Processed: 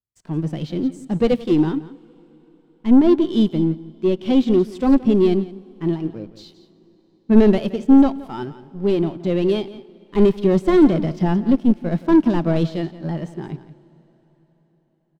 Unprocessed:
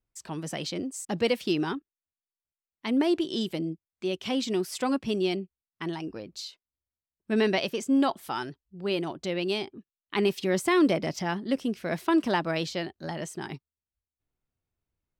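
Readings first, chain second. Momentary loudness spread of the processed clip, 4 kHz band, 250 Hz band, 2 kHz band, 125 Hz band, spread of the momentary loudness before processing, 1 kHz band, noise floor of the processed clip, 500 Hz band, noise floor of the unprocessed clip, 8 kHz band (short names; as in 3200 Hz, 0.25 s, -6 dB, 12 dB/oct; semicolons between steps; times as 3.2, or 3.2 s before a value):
15 LU, -2.5 dB, +12.0 dB, -3.0 dB, +13.5 dB, 13 LU, +3.0 dB, -61 dBFS, +9.0 dB, under -85 dBFS, n/a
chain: HPF 110 Hz 12 dB/oct; dynamic EQ 3500 Hz, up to +6 dB, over -49 dBFS, Q 2.5; sample leveller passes 3; tilt -3.5 dB/oct; harmonic-percussive split harmonic +8 dB; on a send: echo 0.172 s -14 dB; on the sum: plate-style reverb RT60 4.6 s, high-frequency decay 0.9×, DRR 19.5 dB; upward expander 1.5:1, over -14 dBFS; gain -8 dB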